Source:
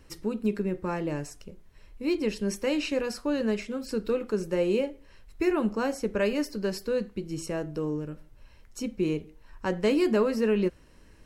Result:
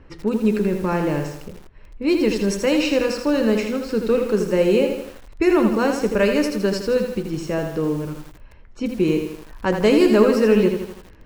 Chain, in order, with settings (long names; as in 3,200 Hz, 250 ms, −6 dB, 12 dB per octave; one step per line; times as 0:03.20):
low-pass that shuts in the quiet parts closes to 2,000 Hz, open at −22.5 dBFS
feedback echo at a low word length 81 ms, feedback 55%, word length 8 bits, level −6 dB
level +8 dB